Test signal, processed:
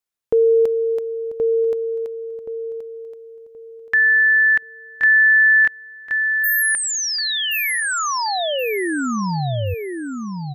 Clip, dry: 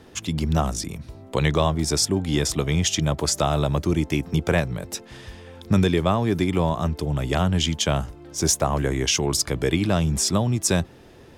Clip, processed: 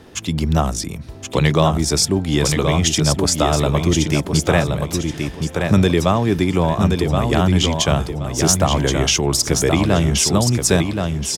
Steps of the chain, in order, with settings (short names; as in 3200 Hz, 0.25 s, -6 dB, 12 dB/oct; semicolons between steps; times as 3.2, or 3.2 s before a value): feedback echo 1.075 s, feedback 27%, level -5 dB; gain +4.5 dB